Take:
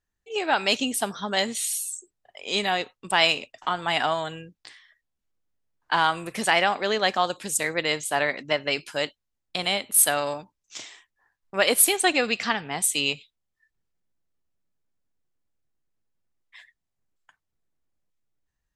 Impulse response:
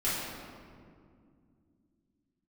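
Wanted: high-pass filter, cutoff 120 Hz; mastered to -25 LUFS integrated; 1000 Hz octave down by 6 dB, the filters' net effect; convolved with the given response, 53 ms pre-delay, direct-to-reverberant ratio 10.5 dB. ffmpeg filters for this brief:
-filter_complex "[0:a]highpass=120,equalizer=f=1k:t=o:g=-8.5,asplit=2[a][b];[1:a]atrim=start_sample=2205,adelay=53[c];[b][c]afir=irnorm=-1:irlink=0,volume=-19.5dB[d];[a][d]amix=inputs=2:normalize=0"

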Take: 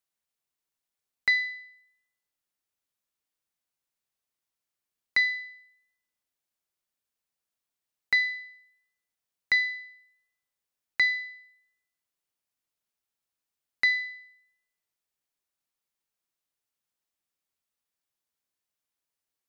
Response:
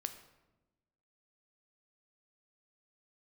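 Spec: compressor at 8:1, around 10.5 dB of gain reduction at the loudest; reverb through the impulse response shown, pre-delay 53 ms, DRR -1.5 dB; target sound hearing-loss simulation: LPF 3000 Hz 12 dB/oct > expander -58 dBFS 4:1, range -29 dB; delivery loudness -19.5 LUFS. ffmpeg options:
-filter_complex "[0:a]acompressor=threshold=-30dB:ratio=8,asplit=2[a][b];[1:a]atrim=start_sample=2205,adelay=53[c];[b][c]afir=irnorm=-1:irlink=0,volume=3dB[d];[a][d]amix=inputs=2:normalize=0,lowpass=3k,agate=range=-29dB:threshold=-58dB:ratio=4,volume=10.5dB"

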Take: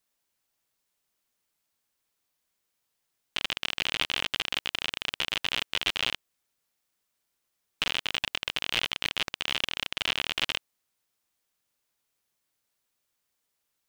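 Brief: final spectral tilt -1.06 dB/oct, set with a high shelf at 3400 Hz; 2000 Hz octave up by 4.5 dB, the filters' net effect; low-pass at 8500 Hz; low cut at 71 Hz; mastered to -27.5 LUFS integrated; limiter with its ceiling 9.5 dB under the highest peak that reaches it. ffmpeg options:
-af "highpass=71,lowpass=8.5k,equalizer=f=2k:t=o:g=8,highshelf=f=3.4k:g=-5.5,volume=4.5dB,alimiter=limit=-10.5dB:level=0:latency=1"

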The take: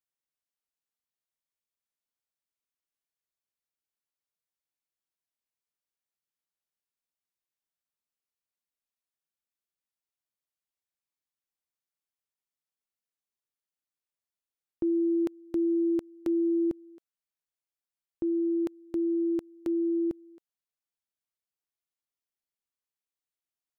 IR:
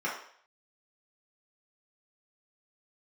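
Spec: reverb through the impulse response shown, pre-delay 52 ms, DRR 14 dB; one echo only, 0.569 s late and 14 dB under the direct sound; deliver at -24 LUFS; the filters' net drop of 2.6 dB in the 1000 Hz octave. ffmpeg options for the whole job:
-filter_complex "[0:a]equalizer=f=1k:t=o:g=-3.5,aecho=1:1:569:0.2,asplit=2[a][b];[1:a]atrim=start_sample=2205,adelay=52[c];[b][c]afir=irnorm=-1:irlink=0,volume=-22.5dB[d];[a][d]amix=inputs=2:normalize=0,volume=4dB"

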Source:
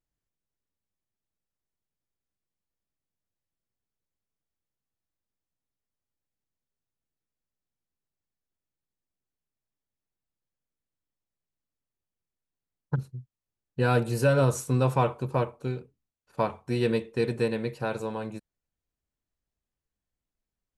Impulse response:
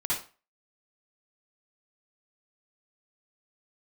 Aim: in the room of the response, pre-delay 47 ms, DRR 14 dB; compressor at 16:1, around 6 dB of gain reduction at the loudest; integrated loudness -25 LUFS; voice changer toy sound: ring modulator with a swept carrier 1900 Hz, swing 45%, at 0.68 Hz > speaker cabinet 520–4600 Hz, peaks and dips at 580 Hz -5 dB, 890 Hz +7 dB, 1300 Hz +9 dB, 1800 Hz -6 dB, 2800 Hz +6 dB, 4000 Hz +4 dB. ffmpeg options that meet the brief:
-filter_complex "[0:a]acompressor=threshold=-23dB:ratio=16,asplit=2[a][b];[1:a]atrim=start_sample=2205,adelay=47[c];[b][c]afir=irnorm=-1:irlink=0,volume=-21.5dB[d];[a][d]amix=inputs=2:normalize=0,aeval=exprs='val(0)*sin(2*PI*1900*n/s+1900*0.45/0.68*sin(2*PI*0.68*n/s))':c=same,highpass=520,equalizer=f=580:t=q:w=4:g=-5,equalizer=f=890:t=q:w=4:g=7,equalizer=f=1.3k:t=q:w=4:g=9,equalizer=f=1.8k:t=q:w=4:g=-6,equalizer=f=2.8k:t=q:w=4:g=6,equalizer=f=4k:t=q:w=4:g=4,lowpass=f=4.6k:w=0.5412,lowpass=f=4.6k:w=1.3066,volume=3dB"

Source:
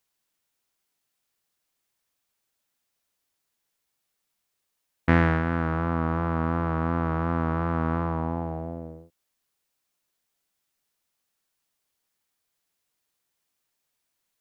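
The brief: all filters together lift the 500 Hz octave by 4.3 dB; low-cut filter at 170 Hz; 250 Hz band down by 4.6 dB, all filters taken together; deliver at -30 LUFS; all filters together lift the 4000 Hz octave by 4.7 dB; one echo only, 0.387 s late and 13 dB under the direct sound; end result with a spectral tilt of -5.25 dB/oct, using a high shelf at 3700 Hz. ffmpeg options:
-af "highpass=170,equalizer=f=250:t=o:g=-7,equalizer=f=500:t=o:g=7,highshelf=f=3.7k:g=-3,equalizer=f=4k:t=o:g=8.5,aecho=1:1:387:0.224,volume=-2.5dB"

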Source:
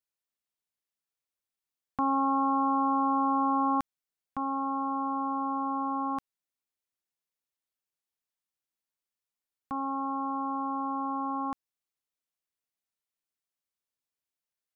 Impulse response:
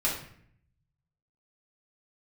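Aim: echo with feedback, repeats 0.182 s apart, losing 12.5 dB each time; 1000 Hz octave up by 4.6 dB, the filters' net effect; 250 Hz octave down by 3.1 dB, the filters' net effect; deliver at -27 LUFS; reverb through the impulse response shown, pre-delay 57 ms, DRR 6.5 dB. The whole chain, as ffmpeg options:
-filter_complex "[0:a]equalizer=f=250:t=o:g=-3.5,equalizer=f=1k:t=o:g=5.5,aecho=1:1:182|364|546:0.237|0.0569|0.0137,asplit=2[a][b];[1:a]atrim=start_sample=2205,adelay=57[c];[b][c]afir=irnorm=-1:irlink=0,volume=-15.5dB[d];[a][d]amix=inputs=2:normalize=0,volume=-4.5dB"

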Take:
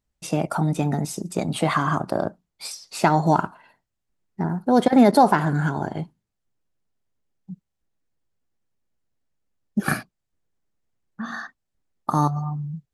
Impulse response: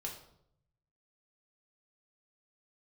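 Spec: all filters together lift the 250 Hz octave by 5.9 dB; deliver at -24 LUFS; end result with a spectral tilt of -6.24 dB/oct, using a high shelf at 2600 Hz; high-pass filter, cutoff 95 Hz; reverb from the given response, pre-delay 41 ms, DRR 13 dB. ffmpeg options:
-filter_complex "[0:a]highpass=95,equalizer=f=250:t=o:g=7,highshelf=f=2.6k:g=5.5,asplit=2[a][b];[1:a]atrim=start_sample=2205,adelay=41[c];[b][c]afir=irnorm=-1:irlink=0,volume=-12dB[d];[a][d]amix=inputs=2:normalize=0,volume=-5.5dB"

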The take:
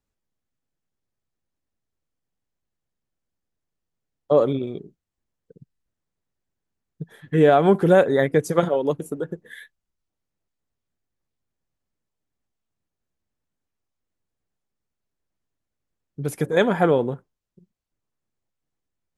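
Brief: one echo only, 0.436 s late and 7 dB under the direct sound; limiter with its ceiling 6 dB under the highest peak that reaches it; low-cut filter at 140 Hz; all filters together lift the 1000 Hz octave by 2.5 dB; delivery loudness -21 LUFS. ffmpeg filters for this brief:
-af "highpass=140,equalizer=f=1k:t=o:g=4,alimiter=limit=-8dB:level=0:latency=1,aecho=1:1:436:0.447,volume=0.5dB"

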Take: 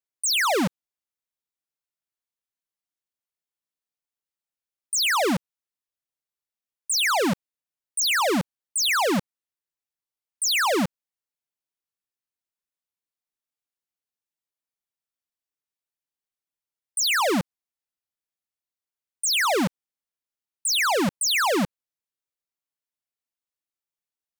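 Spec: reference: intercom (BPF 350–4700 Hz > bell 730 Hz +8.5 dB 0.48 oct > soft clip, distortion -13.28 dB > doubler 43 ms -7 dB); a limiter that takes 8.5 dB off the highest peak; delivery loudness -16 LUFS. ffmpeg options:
-filter_complex "[0:a]alimiter=level_in=6dB:limit=-24dB:level=0:latency=1,volume=-6dB,highpass=350,lowpass=4.7k,equalizer=f=730:t=o:w=0.48:g=8.5,asoftclip=threshold=-26.5dB,asplit=2[a][b];[b]adelay=43,volume=-7dB[c];[a][c]amix=inputs=2:normalize=0,volume=17dB"

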